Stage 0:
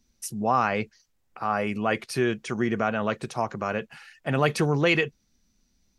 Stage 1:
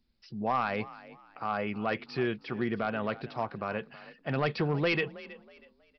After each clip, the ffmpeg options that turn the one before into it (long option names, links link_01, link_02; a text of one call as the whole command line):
ffmpeg -i in.wav -filter_complex "[0:a]aresample=11025,aeval=exprs='clip(val(0),-1,0.168)':channel_layout=same,aresample=44100,asplit=4[link_01][link_02][link_03][link_04];[link_02]adelay=321,afreqshift=36,volume=-18dB[link_05];[link_03]adelay=642,afreqshift=72,volume=-28.2dB[link_06];[link_04]adelay=963,afreqshift=108,volume=-38.3dB[link_07];[link_01][link_05][link_06][link_07]amix=inputs=4:normalize=0,volume=-5.5dB" out.wav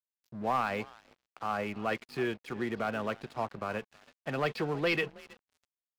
ffmpeg -i in.wav -filter_complex "[0:a]acrossover=split=260|660|2700[link_01][link_02][link_03][link_04];[link_01]alimiter=level_in=11dB:limit=-24dB:level=0:latency=1:release=81,volume=-11dB[link_05];[link_05][link_02][link_03][link_04]amix=inputs=4:normalize=0,aeval=exprs='sgn(val(0))*max(abs(val(0))-0.00447,0)':channel_layout=same" out.wav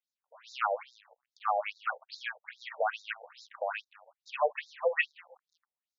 ffmpeg -i in.wav -af "afftfilt=real='re*between(b*sr/1024,630*pow(5200/630,0.5+0.5*sin(2*PI*2.4*pts/sr))/1.41,630*pow(5200/630,0.5+0.5*sin(2*PI*2.4*pts/sr))*1.41)':imag='im*between(b*sr/1024,630*pow(5200/630,0.5+0.5*sin(2*PI*2.4*pts/sr))/1.41,630*pow(5200/630,0.5+0.5*sin(2*PI*2.4*pts/sr))*1.41)':win_size=1024:overlap=0.75,volume=7dB" out.wav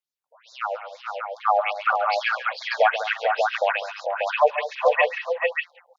ffmpeg -i in.wav -filter_complex "[0:a]dynaudnorm=framelen=200:gausssize=13:maxgain=12dB,asplit=2[link_01][link_02];[link_02]aecho=0:1:137|202|423|447|589:0.224|0.211|0.168|0.562|0.596[link_03];[link_01][link_03]amix=inputs=2:normalize=0" out.wav